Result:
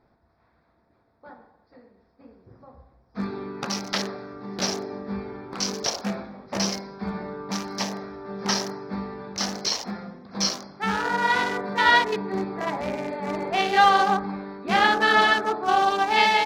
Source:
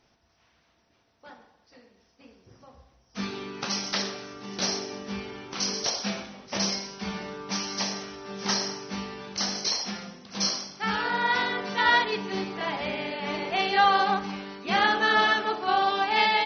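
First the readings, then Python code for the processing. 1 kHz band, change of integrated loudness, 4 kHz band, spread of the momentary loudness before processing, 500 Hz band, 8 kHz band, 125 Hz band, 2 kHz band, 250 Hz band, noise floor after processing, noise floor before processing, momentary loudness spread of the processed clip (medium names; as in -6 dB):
+3.5 dB, +2.5 dB, +0.5 dB, 15 LU, +4.0 dB, no reading, +4.0 dB, +2.5 dB, +4.0 dB, -66 dBFS, -67 dBFS, 16 LU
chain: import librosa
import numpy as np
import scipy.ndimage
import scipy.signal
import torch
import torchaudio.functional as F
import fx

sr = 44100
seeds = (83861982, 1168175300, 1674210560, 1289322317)

y = fx.wiener(x, sr, points=15)
y = F.gain(torch.from_numpy(y), 4.0).numpy()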